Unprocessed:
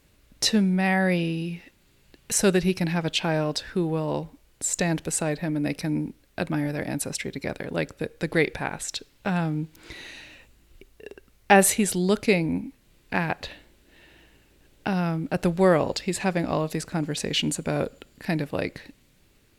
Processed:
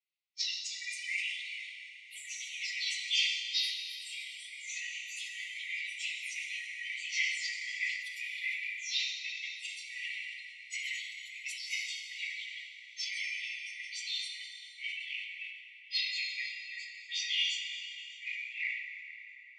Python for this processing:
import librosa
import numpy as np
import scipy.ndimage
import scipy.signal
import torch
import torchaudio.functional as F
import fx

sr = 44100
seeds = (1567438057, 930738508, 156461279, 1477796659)

p1 = fx.phase_scramble(x, sr, seeds[0], window_ms=100)
p2 = fx.over_compress(p1, sr, threshold_db=-27.0, ratio=-0.5)
p3 = fx.noise_reduce_blind(p2, sr, reduce_db=29)
p4 = scipy.signal.sosfilt(scipy.signal.butter(6, 5600.0, 'lowpass', fs=sr, output='sos'), p3)
p5 = fx.high_shelf(p4, sr, hz=2400.0, db=-5.5)
p6 = p5 + fx.echo_wet_highpass(p5, sr, ms=596, feedback_pct=30, hz=4100.0, wet_db=-23.0, dry=0)
p7 = fx.pitch_keep_formants(p6, sr, semitones=-5.0)
p8 = 10.0 ** (-16.5 / 20.0) * np.tanh(p7 / 10.0 ** (-16.5 / 20.0))
p9 = fx.echo_pitch(p8, sr, ms=339, semitones=4, count=2, db_per_echo=-6.0)
p10 = fx.brickwall_highpass(p9, sr, low_hz=1900.0)
p11 = fx.rev_plate(p10, sr, seeds[1], rt60_s=4.2, hf_ratio=0.6, predelay_ms=0, drr_db=0.5)
p12 = fx.sustainer(p11, sr, db_per_s=54.0)
y = F.gain(torch.from_numpy(p12), 3.5).numpy()